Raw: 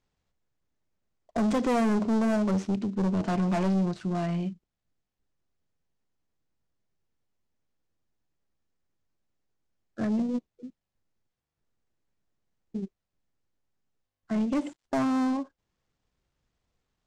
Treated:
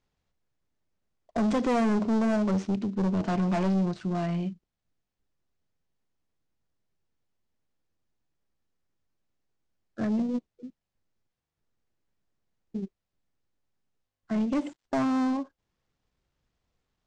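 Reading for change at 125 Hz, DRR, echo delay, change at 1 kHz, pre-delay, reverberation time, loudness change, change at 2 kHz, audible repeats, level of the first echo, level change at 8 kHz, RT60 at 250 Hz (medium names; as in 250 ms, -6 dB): 0.0 dB, no reverb, no echo, 0.0 dB, no reverb, no reverb, 0.0 dB, 0.0 dB, no echo, no echo, no reading, no reverb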